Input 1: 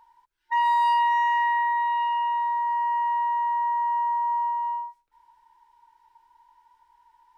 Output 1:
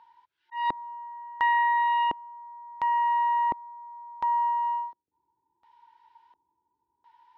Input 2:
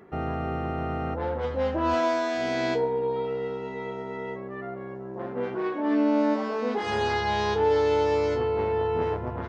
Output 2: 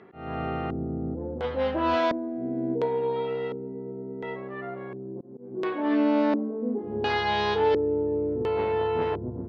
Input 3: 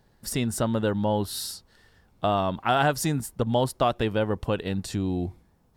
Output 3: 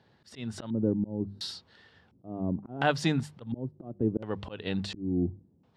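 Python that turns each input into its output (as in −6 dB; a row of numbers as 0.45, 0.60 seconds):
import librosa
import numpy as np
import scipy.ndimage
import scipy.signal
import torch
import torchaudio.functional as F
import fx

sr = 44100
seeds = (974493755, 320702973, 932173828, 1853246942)

y = scipy.signal.sosfilt(scipy.signal.butter(4, 83.0, 'highpass', fs=sr, output='sos'), x)
y = fx.hum_notches(y, sr, base_hz=50, count=4)
y = fx.auto_swell(y, sr, attack_ms=278.0)
y = fx.filter_lfo_lowpass(y, sr, shape='square', hz=0.71, low_hz=310.0, high_hz=3600.0, q=1.5)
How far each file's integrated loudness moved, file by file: −2.5, −0.5, −5.5 LU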